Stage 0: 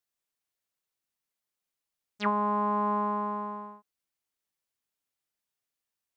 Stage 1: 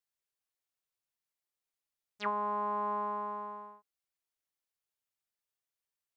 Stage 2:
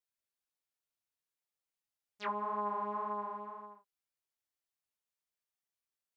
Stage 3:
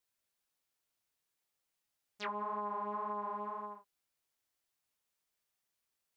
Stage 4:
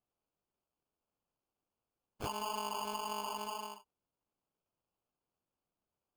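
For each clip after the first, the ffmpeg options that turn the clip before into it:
ffmpeg -i in.wav -af "equalizer=frequency=230:width_type=o:width=0.57:gain=-11,volume=-5dB" out.wav
ffmpeg -i in.wav -af "flanger=delay=19:depth=4.8:speed=1.9" out.wav
ffmpeg -i in.wav -filter_complex "[0:a]acompressor=threshold=-39dB:ratio=6,asplit=2[link_01][link_02];[link_02]alimiter=level_in=16.5dB:limit=-24dB:level=0:latency=1:release=256,volume=-16.5dB,volume=1dB[link_03];[link_01][link_03]amix=inputs=2:normalize=0" out.wav
ffmpeg -i in.wav -af "afftdn=noise_reduction=15:noise_floor=-57,highshelf=frequency=3000:gain=10.5,acrusher=samples=23:mix=1:aa=0.000001,volume=-1.5dB" out.wav

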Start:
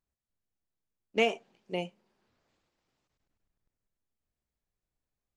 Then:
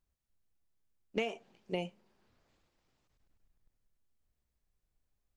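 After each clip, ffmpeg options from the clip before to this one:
ffmpeg -i in.wav -af "lowshelf=frequency=73:gain=10.5,acompressor=threshold=-31dB:ratio=10,volume=1dB" out.wav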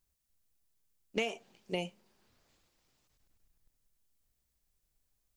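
ffmpeg -i in.wav -af "highshelf=frequency=3900:gain=11" out.wav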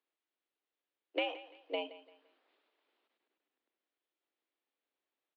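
ffmpeg -i in.wav -af "aecho=1:1:171|342|513:0.141|0.0452|0.0145,highpass=frequency=210:width_type=q:width=0.5412,highpass=frequency=210:width_type=q:width=1.307,lowpass=frequency=3600:width_type=q:width=0.5176,lowpass=frequency=3600:width_type=q:width=0.7071,lowpass=frequency=3600:width_type=q:width=1.932,afreqshift=96,volume=-1dB" out.wav

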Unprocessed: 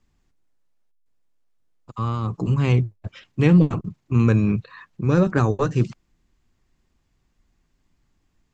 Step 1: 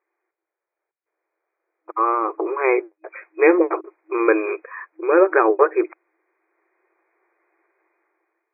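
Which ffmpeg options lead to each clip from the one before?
ffmpeg -i in.wav -af "afftfilt=real='re*between(b*sr/4096,320,2500)':imag='im*between(b*sr/4096,320,2500)':win_size=4096:overlap=0.75,dynaudnorm=framelen=720:gausssize=3:maxgain=12.5dB" out.wav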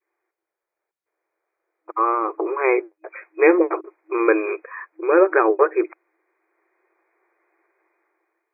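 ffmpeg -i in.wav -af "adynamicequalizer=threshold=0.0562:dfrequency=840:dqfactor=0.9:tfrequency=840:tqfactor=0.9:attack=5:release=100:ratio=0.375:range=1.5:mode=cutabove:tftype=bell" out.wav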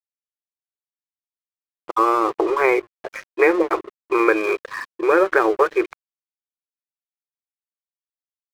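ffmpeg -i in.wav -filter_complex "[0:a]acrossover=split=640|1500[link_01][link_02][link_03];[link_01]acompressor=threshold=-25dB:ratio=4[link_04];[link_02]acompressor=threshold=-29dB:ratio=4[link_05];[link_03]acompressor=threshold=-29dB:ratio=4[link_06];[link_04][link_05][link_06]amix=inputs=3:normalize=0,aeval=exprs='sgn(val(0))*max(abs(val(0))-0.00794,0)':channel_layout=same,volume=7.5dB" out.wav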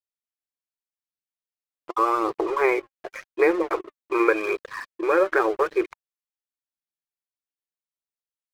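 ffmpeg -i in.wav -af "flanger=delay=0.2:depth=3.5:regen=61:speed=0.87:shape=sinusoidal" out.wav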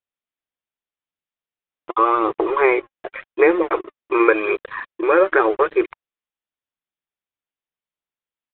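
ffmpeg -i in.wav -af "aresample=8000,aresample=44100,volume=5dB" out.wav

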